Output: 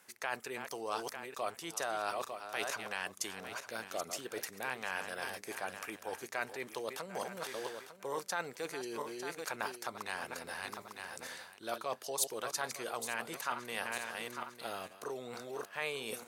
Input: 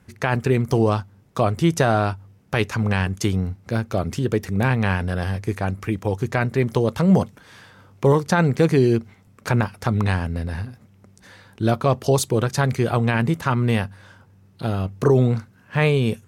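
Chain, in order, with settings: regenerating reverse delay 0.451 s, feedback 45%, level -10.5 dB; high shelf 5400 Hz +11.5 dB; reverse; compressor 10:1, threshold -27 dBFS, peak gain reduction 16.5 dB; reverse; HPF 600 Hz 12 dB/oct; gain -2 dB

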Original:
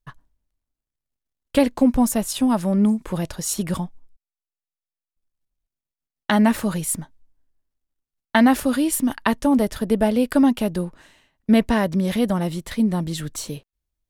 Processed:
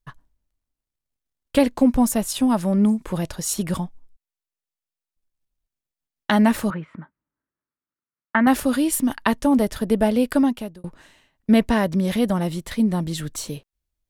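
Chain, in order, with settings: 6.7–8.47 speaker cabinet 190–2100 Hz, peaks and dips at 270 Hz -4 dB, 470 Hz -5 dB, 730 Hz -10 dB, 1300 Hz +6 dB; 10.3–10.84 fade out

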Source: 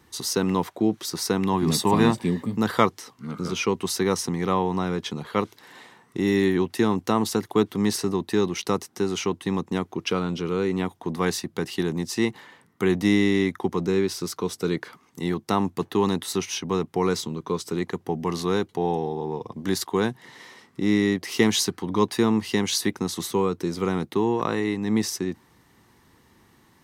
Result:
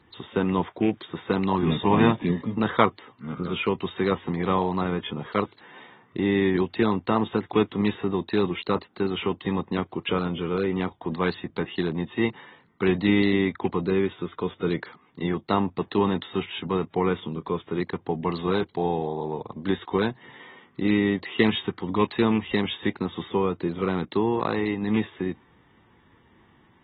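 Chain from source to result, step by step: rattling part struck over -20 dBFS, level -24 dBFS; gain -1 dB; AAC 16 kbps 32000 Hz

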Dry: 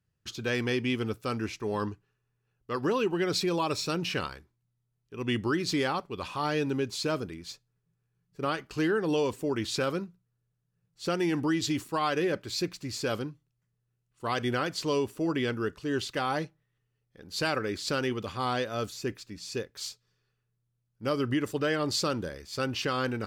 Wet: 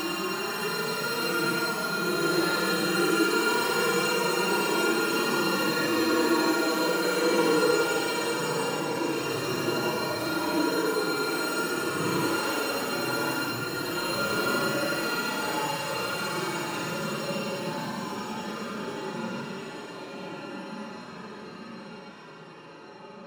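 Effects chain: sample sorter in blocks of 32 samples; frequency shift +26 Hz; digital reverb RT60 1.9 s, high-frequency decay 0.85×, pre-delay 0.105 s, DRR -6.5 dB; Paulstretch 13×, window 0.05 s, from 8.86; gain -5.5 dB

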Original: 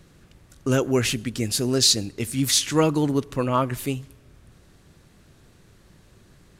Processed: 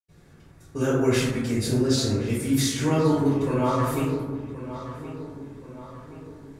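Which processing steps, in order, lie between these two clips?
1.5–2.12 tone controls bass +4 dB, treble -5 dB; limiter -14 dBFS, peak gain reduction 7 dB; darkening echo 1.075 s, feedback 50%, low-pass 3200 Hz, level -12.5 dB; reverb RT60 1.4 s, pre-delay 83 ms; ending taper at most 180 dB/s

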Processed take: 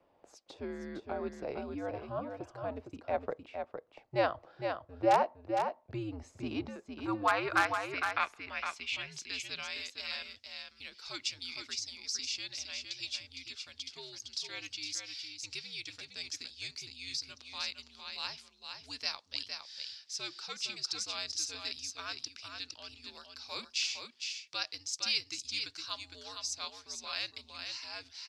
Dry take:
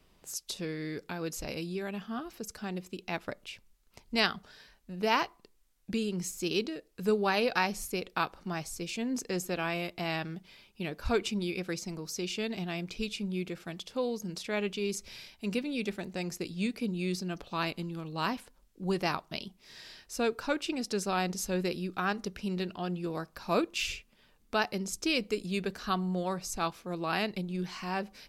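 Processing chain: band-pass sweep 740 Hz -> 5100 Hz, 6.36–9.87; frequency shift -100 Hz; in parallel at -9 dB: wrapped overs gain 23 dB; on the sum: LPF 8100 Hz 12 dB/oct; on a send: echo 0.46 s -6 dB; on the sum: gain +4.5 dB

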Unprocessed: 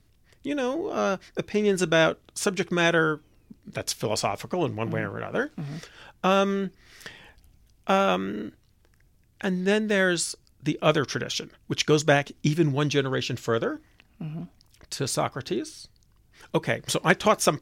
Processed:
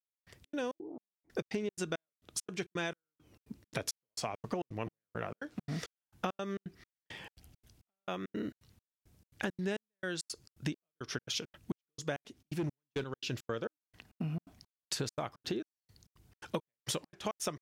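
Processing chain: HPF 66 Hz; 12.42–13.04 sample leveller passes 2; compressor 16:1, threshold -33 dBFS, peak gain reduction 20 dB; 0.78–1.3 vocal tract filter u; step gate "...xx.xx.xx" 169 bpm -60 dB; gain +1 dB

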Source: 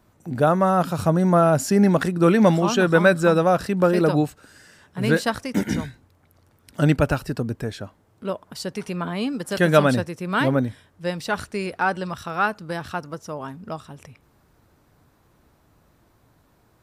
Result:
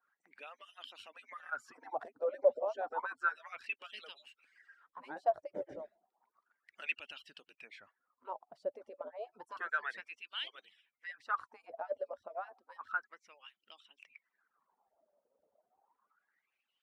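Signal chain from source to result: median-filter separation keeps percussive; limiter -15 dBFS, peak gain reduction 9.5 dB; wah 0.31 Hz 560–3100 Hz, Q 13; gain +4 dB

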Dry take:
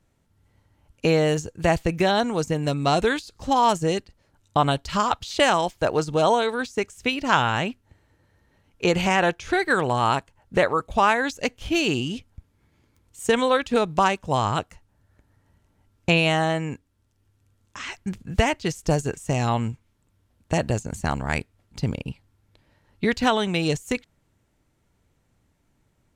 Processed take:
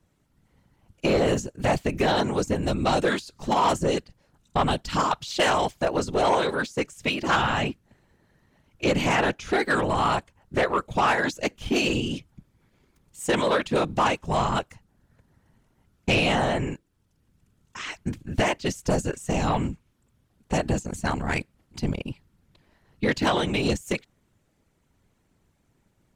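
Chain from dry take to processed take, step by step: whisperiser; soft clip -14.5 dBFS, distortion -16 dB

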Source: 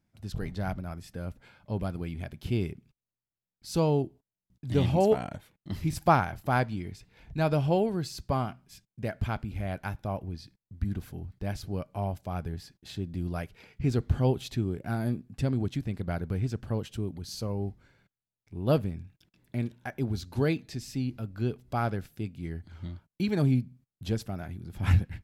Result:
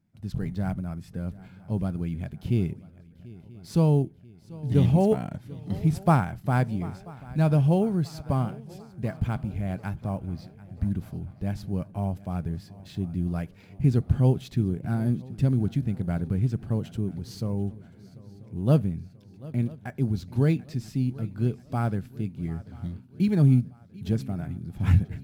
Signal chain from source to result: bell 160 Hz +10 dB 1.6 oct; in parallel at -11 dB: sample-rate reducer 9400 Hz, jitter 0%; on the sum: swung echo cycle 0.986 s, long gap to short 3:1, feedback 49%, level -20.5 dB; gain -4.5 dB

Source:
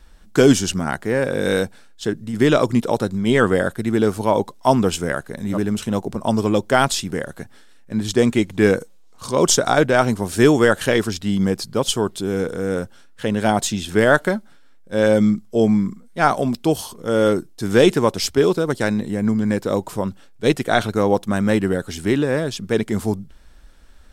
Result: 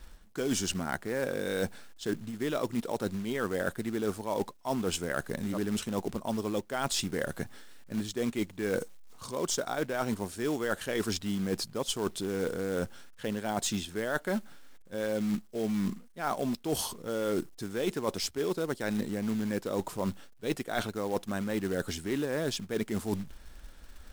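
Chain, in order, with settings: dynamic EQ 120 Hz, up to -5 dB, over -33 dBFS, Q 1.4; reverse; compressor 16:1, threshold -26 dBFS, peak gain reduction 18.5 dB; reverse; short-mantissa float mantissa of 2-bit; gain -1.5 dB

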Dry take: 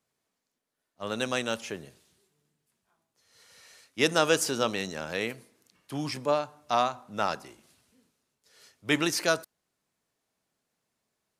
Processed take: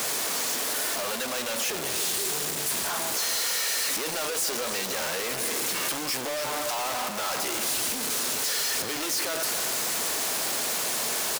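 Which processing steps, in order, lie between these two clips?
infinite clipping; tone controls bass -14 dB, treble +4 dB; echo 0.291 s -10 dB; gain +3 dB

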